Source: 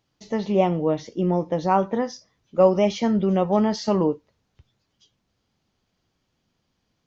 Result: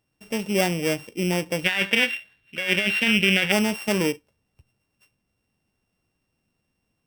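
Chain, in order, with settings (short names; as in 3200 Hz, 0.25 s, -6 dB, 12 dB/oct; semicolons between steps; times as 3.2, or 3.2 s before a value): sample sorter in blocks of 16 samples; 1.64–3.52 band shelf 2400 Hz +14.5 dB; negative-ratio compressor -16 dBFS, ratio -1; gain -4.5 dB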